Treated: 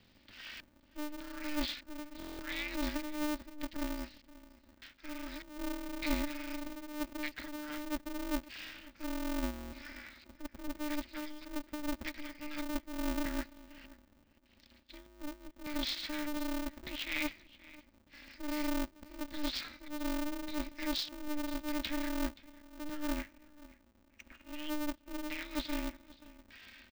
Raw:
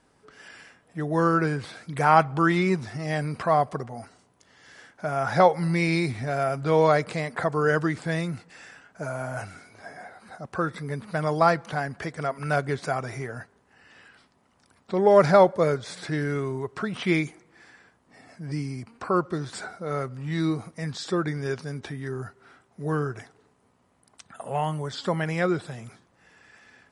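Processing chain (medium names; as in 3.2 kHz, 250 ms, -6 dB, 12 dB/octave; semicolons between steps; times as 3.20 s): reverse; compression 10:1, threshold -31 dBFS, peak gain reduction 19.5 dB; reverse; peaking EQ 1.1 kHz -4 dB 1.4 oct; LFO low-pass square 0.83 Hz 420–4400 Hz; inverse Chebyshev band-stop 310–880 Hz, stop band 60 dB; distance through air 260 m; on a send: delay 526 ms -20 dB; on the sum: spectral selection erased 23.04–24.48 s, 2.7–5.8 kHz; buffer glitch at 2.18/9.52 s, samples 1024, times 8; polarity switched at an audio rate 150 Hz; trim +7.5 dB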